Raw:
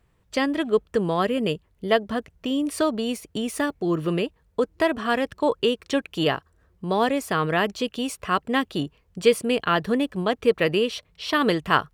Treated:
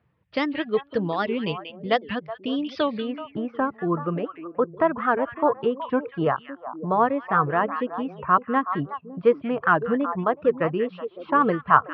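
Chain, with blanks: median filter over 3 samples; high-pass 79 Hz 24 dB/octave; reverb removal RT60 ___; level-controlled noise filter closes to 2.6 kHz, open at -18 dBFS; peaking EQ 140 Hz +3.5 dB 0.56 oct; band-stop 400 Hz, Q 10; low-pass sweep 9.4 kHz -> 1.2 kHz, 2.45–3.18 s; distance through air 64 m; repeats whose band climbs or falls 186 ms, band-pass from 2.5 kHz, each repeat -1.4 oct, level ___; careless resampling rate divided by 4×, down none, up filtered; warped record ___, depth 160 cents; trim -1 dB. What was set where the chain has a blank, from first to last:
1.5 s, -5.5 dB, 78 rpm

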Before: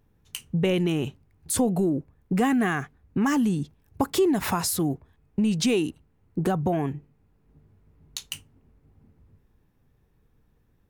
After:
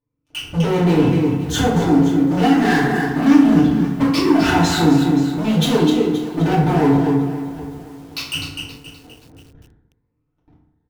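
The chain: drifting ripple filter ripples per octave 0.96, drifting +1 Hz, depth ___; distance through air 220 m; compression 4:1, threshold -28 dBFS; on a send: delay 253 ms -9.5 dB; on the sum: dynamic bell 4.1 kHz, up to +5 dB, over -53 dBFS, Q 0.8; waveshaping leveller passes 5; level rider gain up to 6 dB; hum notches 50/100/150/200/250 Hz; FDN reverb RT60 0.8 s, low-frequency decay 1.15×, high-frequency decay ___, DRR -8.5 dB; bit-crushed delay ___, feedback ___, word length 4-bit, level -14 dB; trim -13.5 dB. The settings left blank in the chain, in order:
13 dB, 0.6×, 524 ms, 35%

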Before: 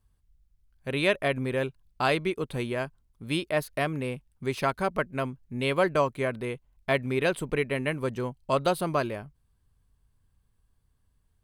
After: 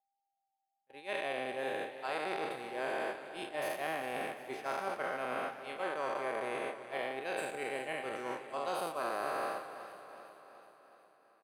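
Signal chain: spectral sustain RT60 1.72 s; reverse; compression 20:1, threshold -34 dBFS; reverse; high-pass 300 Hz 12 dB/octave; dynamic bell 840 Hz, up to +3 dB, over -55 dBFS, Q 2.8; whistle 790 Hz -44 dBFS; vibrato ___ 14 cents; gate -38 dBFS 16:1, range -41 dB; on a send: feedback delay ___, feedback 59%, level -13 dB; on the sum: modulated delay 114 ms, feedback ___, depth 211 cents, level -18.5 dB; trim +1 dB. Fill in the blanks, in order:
1.3 Hz, 373 ms, 78%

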